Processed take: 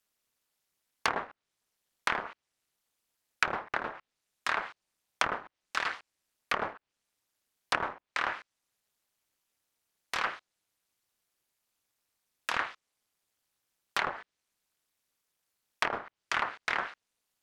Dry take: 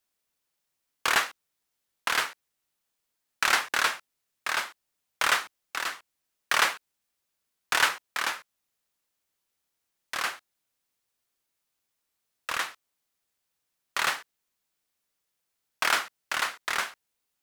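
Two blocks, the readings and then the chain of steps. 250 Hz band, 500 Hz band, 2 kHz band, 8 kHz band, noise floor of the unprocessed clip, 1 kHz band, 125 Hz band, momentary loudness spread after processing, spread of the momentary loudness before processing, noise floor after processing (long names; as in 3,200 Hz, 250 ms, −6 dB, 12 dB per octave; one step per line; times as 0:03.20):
+1.0 dB, 0.0 dB, −6.0 dB, −13.5 dB, −81 dBFS, −3.5 dB, can't be measured, 10 LU, 13 LU, below −85 dBFS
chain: treble cut that deepens with the level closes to 720 Hz, closed at −22 dBFS
amplitude modulation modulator 220 Hz, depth 95%
level +4.5 dB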